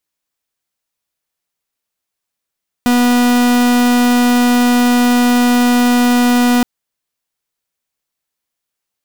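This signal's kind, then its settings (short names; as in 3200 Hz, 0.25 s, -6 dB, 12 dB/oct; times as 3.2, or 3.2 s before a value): pulse 244 Hz, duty 44% -11 dBFS 3.77 s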